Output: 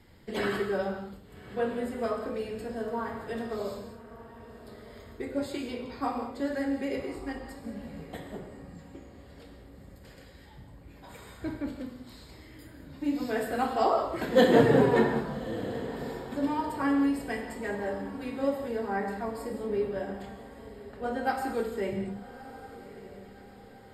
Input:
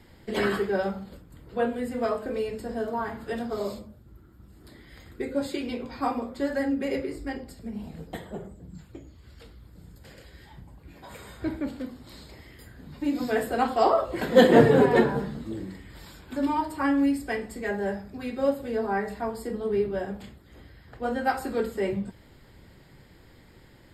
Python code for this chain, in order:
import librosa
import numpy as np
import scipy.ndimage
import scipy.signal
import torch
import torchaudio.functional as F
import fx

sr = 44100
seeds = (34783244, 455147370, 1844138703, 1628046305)

y = fx.echo_diffused(x, sr, ms=1200, feedback_pct=47, wet_db=-15)
y = fx.rev_gated(y, sr, seeds[0], gate_ms=230, shape='flat', drr_db=5.0)
y = y * 10.0 ** (-4.5 / 20.0)